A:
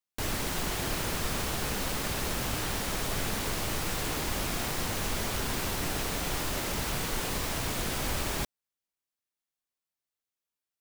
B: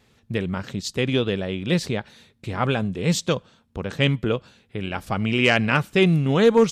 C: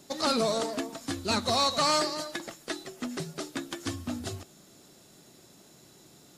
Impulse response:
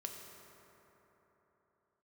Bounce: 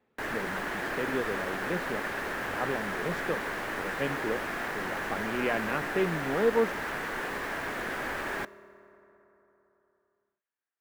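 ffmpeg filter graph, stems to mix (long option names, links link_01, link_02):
-filter_complex "[0:a]equalizer=frequency=1700:width_type=o:width=0.51:gain=9.5,volume=-1dB,asplit=2[link_01][link_02];[link_02]volume=-10.5dB[link_03];[1:a]highshelf=frequency=2100:gain=-8,volume=-7.5dB[link_04];[3:a]atrim=start_sample=2205[link_05];[link_03][link_05]afir=irnorm=-1:irlink=0[link_06];[link_01][link_04][link_06]amix=inputs=3:normalize=0,acrossover=split=230 2400:gain=0.158 1 0.178[link_07][link_08][link_09];[link_07][link_08][link_09]amix=inputs=3:normalize=0"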